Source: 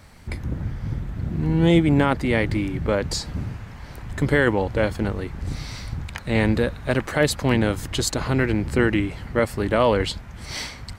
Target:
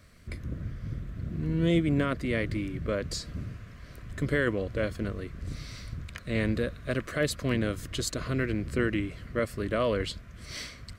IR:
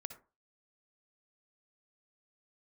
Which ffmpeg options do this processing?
-af "asuperstop=centerf=850:order=4:qfactor=2.6,volume=-8dB"

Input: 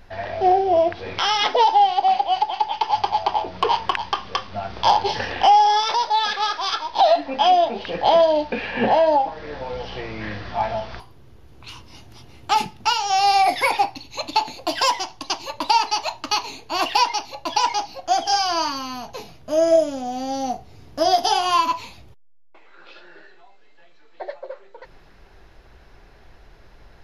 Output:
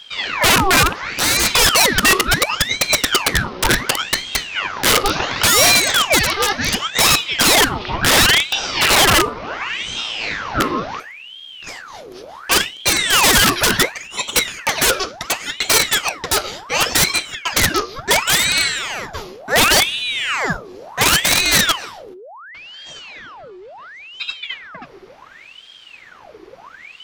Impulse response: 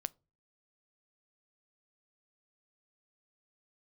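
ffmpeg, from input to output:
-filter_complex "[0:a]aeval=exprs='(mod(4.47*val(0)+1,2)-1)/4.47':channel_layout=same,asplit=2[link_01][link_02];[1:a]atrim=start_sample=2205,asetrate=26460,aresample=44100[link_03];[link_02][link_03]afir=irnorm=-1:irlink=0,volume=16.5dB[link_04];[link_01][link_04]amix=inputs=2:normalize=0,aeval=exprs='val(0)*sin(2*PI*1800*n/s+1800*0.8/0.7*sin(2*PI*0.7*n/s))':channel_layout=same,volume=-10.5dB"

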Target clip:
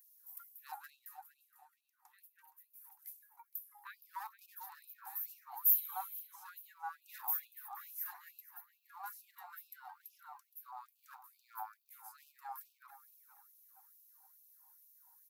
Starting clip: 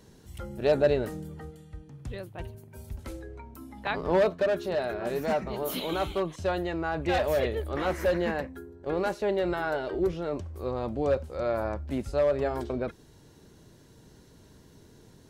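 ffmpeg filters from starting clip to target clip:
ffmpeg -i in.wav -filter_complex "[0:a]firequalizer=gain_entry='entry(560,0);entry(1500,-19);entry(3000,-30);entry(5200,-18);entry(8300,-13);entry(13000,12)':delay=0.05:min_phase=1,asplit=2[link_01][link_02];[link_02]adelay=468,lowpass=frequency=4800:poles=1,volume=-11.5dB,asplit=2[link_03][link_04];[link_04]adelay=468,lowpass=frequency=4800:poles=1,volume=0.4,asplit=2[link_05][link_06];[link_06]adelay=468,lowpass=frequency=4800:poles=1,volume=0.4,asplit=2[link_07][link_08];[link_08]adelay=468,lowpass=frequency=4800:poles=1,volume=0.4[link_09];[link_01][link_03][link_05][link_07][link_09]amix=inputs=5:normalize=0,aphaser=in_gain=1:out_gain=1:delay=3.8:decay=0.29:speed=0.69:type=triangular,asettb=1/sr,asplit=3[link_10][link_11][link_12];[link_10]atrim=end=0.904[link_13];[link_11]atrim=start=0.9:end=3.02,asetpts=PTS-STARTPTS,afade=type=in:duration=0.004:curve=qsin,afade=type=out:start_time=2.116:duration=0.004:curve=qsin,highshelf=frequency=9200:gain=-11.5[link_14];[link_12]atrim=start=3.016[link_15];[link_13][link_14]acrossfade=duration=0.004:curve1=hsin:curve2=qsin[link_16];[link_16][link_15]acrossfade=duration=0.004:curve1=qsin:curve2=hsin,afftfilt=real='re*gte(b*sr/1024,730*pow(2500/730,0.5+0.5*sin(2*PI*2.3*pts/sr)))':imag='im*gte(b*sr/1024,730*pow(2500/730,0.5+0.5*sin(2*PI*2.3*pts/sr)))':win_size=1024:overlap=0.75,volume=2dB" out.wav

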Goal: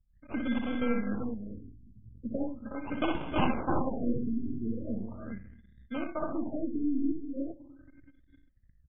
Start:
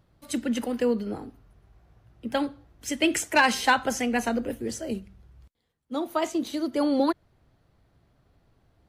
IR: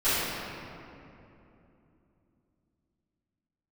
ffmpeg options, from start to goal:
-filter_complex "[0:a]aeval=exprs='if(lt(val(0),0),0.708*val(0),val(0))':channel_layout=same,equalizer=frequency=160:width_type=o:width=0.67:gain=-3,equalizer=frequency=400:width_type=o:width=0.67:gain=-11,equalizer=frequency=1000:width_type=o:width=0.67:gain=-10,equalizer=frequency=10000:width_type=o:width=0.67:gain=-12,asplit=2[link_01][link_02];[link_02]acompressor=threshold=-42dB:ratio=6,volume=-1dB[link_03];[link_01][link_03]amix=inputs=2:normalize=0,lowshelf=frequency=490:gain=4,aecho=1:1:58|87|314|366|402:0.562|0.316|0.141|0.316|0.422,agate=range=-33dB:threshold=-55dB:ratio=3:detection=peak,asplit=2[link_04][link_05];[1:a]atrim=start_sample=2205,adelay=31[link_06];[link_05][link_06]afir=irnorm=-1:irlink=0,volume=-33.5dB[link_07];[link_04][link_07]amix=inputs=2:normalize=0,anlmdn=0.158,acrusher=samples=24:mix=1:aa=0.000001,afftfilt=real='re*lt(b*sr/1024,390*pow(3800/390,0.5+0.5*sin(2*PI*0.39*pts/sr)))':imag='im*lt(b*sr/1024,390*pow(3800/390,0.5+0.5*sin(2*PI*0.39*pts/sr)))':win_size=1024:overlap=0.75,volume=-5dB"

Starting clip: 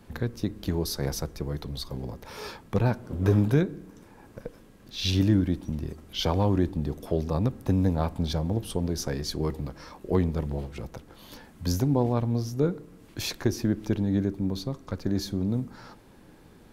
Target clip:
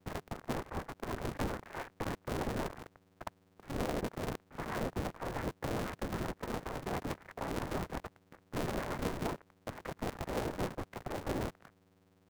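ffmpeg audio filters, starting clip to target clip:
ffmpeg -i in.wav -af "aemphasis=mode=reproduction:type=75kf,bandreject=frequency=50:width_type=h:width=6,bandreject=frequency=100:width_type=h:width=6,bandreject=frequency=150:width_type=h:width=6,bandreject=frequency=200:width_type=h:width=6,adynamicequalizer=threshold=0.002:dfrequency=1100:dqfactor=4:tfrequency=1100:tqfactor=4:attack=5:release=100:ratio=0.375:range=3.5:mode=boostabove:tftype=bell,acompressor=threshold=-27dB:ratio=5,alimiter=level_in=2.5dB:limit=-24dB:level=0:latency=1:release=321,volume=-2.5dB,atempo=0.68,afftfilt=real='hypot(re,im)*cos(2*PI*random(0))':imag='hypot(re,im)*sin(2*PI*random(1))':win_size=512:overlap=0.75,aeval=exprs='val(0)*gte(abs(val(0)),0.00531)':channel_layout=same,aeval=exprs='val(0)+0.000355*(sin(2*PI*50*n/s)+sin(2*PI*2*50*n/s)/2+sin(2*PI*3*50*n/s)/3+sin(2*PI*4*50*n/s)/4+sin(2*PI*5*50*n/s)/5)':channel_layout=same,asetrate=88200,aresample=44100,highpass=frequency=150:width_type=q:width=0.5412,highpass=frequency=150:width_type=q:width=1.307,lowpass=frequency=2100:width_type=q:width=0.5176,lowpass=frequency=2100:width_type=q:width=0.7071,lowpass=frequency=2100:width_type=q:width=1.932,afreqshift=-160,aeval=exprs='val(0)*sgn(sin(2*PI*140*n/s))':channel_layout=same,volume=7dB" out.wav

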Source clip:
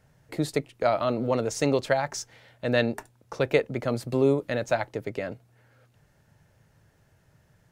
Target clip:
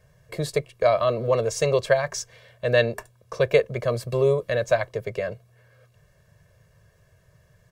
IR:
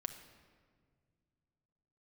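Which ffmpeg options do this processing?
-af "aecho=1:1:1.8:0.96"

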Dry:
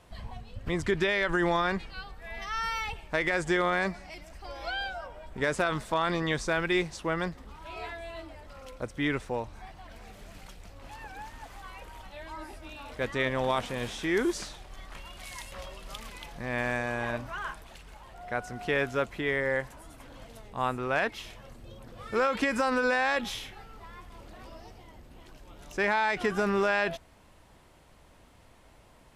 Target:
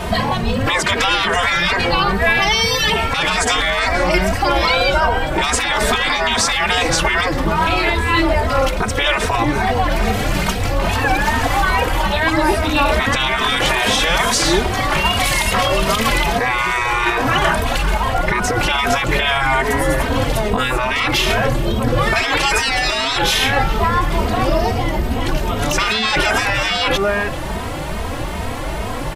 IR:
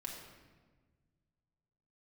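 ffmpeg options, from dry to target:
-filter_complex "[0:a]asplit=2[link_01][link_02];[link_02]adelay=402.3,volume=-23dB,highshelf=frequency=4000:gain=-9.05[link_03];[link_01][link_03]amix=inputs=2:normalize=0,afftfilt=real='re*lt(hypot(re,im),0.0562)':imag='im*lt(hypot(re,im),0.0562)':win_size=1024:overlap=0.75,equalizer=frequency=7600:width_type=o:width=2.2:gain=-4.5,asplit=2[link_04][link_05];[link_05]acompressor=threshold=-52dB:ratio=6,volume=1dB[link_06];[link_04][link_06]amix=inputs=2:normalize=0,alimiter=level_in=33dB:limit=-1dB:release=50:level=0:latency=1,asplit=2[link_07][link_08];[link_08]adelay=2.9,afreqshift=2.4[link_09];[link_07][link_09]amix=inputs=2:normalize=1,volume=-2dB"

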